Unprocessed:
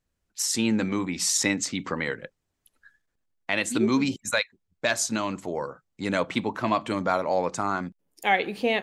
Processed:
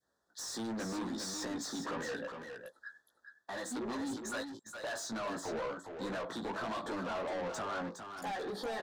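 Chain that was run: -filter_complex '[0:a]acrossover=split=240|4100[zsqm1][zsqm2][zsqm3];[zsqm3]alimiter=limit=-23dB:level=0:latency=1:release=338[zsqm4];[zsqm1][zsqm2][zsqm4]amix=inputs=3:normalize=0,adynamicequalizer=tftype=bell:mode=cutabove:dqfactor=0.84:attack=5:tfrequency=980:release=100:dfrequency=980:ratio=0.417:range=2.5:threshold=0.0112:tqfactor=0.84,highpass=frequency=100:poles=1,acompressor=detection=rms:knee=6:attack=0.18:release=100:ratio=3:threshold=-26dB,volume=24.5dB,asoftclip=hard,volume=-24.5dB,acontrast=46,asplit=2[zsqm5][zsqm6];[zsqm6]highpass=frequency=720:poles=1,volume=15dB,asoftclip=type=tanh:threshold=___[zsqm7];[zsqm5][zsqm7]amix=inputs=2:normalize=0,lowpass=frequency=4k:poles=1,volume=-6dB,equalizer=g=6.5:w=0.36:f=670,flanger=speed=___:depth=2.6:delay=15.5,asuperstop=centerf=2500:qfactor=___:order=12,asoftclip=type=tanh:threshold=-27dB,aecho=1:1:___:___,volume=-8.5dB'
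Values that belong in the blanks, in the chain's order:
-18.5dB, 0.84, 1.7, 411, 0.447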